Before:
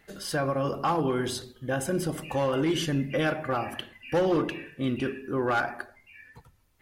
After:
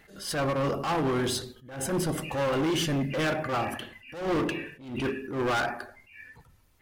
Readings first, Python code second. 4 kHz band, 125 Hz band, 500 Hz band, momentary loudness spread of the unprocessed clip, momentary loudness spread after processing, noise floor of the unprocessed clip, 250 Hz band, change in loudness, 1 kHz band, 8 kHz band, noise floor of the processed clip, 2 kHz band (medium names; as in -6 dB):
+1.5 dB, -0.5 dB, -1.5 dB, 8 LU, 14 LU, -62 dBFS, -1.0 dB, -0.5 dB, -1.0 dB, +2.5 dB, -60 dBFS, 0.0 dB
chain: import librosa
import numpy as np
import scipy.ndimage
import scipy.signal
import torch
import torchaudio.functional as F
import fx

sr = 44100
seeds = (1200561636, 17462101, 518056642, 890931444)

y = np.clip(10.0 ** (28.0 / 20.0) * x, -1.0, 1.0) / 10.0 ** (28.0 / 20.0)
y = fx.attack_slew(y, sr, db_per_s=100.0)
y = y * 10.0 ** (4.0 / 20.0)